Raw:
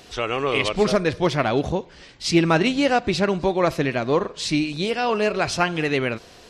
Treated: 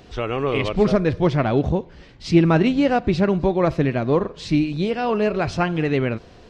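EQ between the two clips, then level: tape spacing loss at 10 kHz 23 dB; bass shelf 270 Hz +8 dB; treble shelf 6.4 kHz +8 dB; 0.0 dB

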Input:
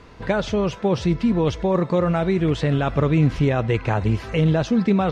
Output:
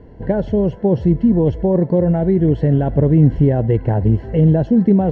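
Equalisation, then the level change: boxcar filter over 36 samples; +6.5 dB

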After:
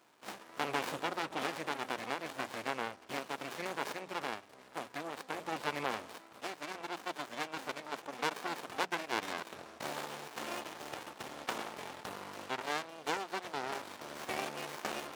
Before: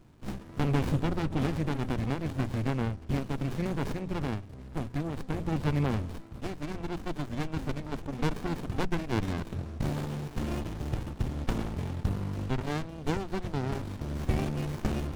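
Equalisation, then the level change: high-pass 680 Hz 12 dB/octave; +2.5 dB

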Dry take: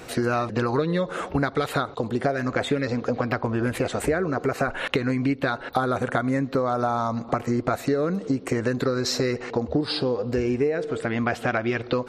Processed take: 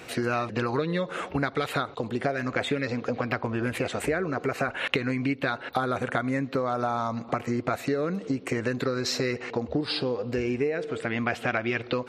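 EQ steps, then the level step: high-pass 67 Hz; peaking EQ 2.5 kHz +6.5 dB 1 oct; -4.0 dB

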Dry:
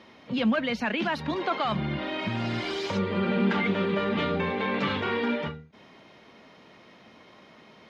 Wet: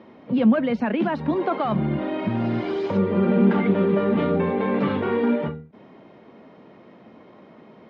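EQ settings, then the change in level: band-pass filter 290 Hz, Q 0.54; +8.0 dB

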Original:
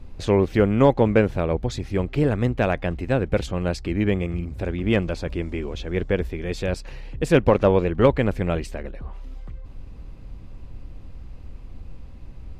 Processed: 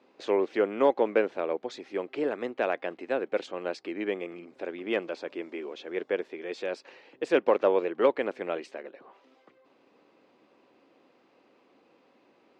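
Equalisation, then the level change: high-pass 320 Hz 24 dB/octave; distance through air 110 m; -4.5 dB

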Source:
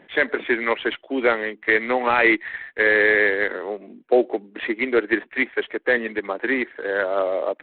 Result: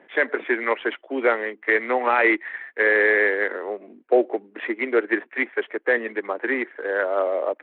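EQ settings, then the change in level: three-band isolator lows -19 dB, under 240 Hz, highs -16 dB, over 2.7 kHz; 0.0 dB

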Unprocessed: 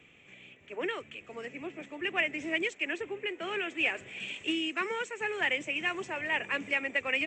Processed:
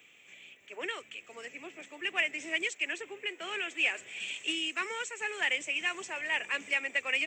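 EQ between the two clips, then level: RIAA curve recording; -3.0 dB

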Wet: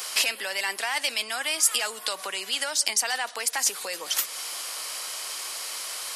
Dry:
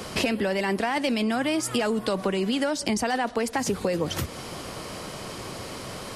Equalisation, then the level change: Bessel high-pass 1 kHz, order 2; tilt EQ +2.5 dB/octave; treble shelf 5.8 kHz +4.5 dB; 0.0 dB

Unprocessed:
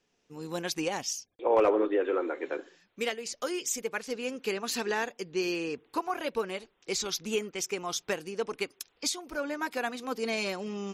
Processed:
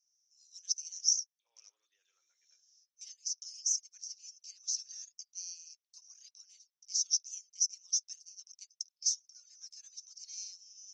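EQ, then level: Butterworth band-pass 5.8 kHz, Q 6.6; +8.5 dB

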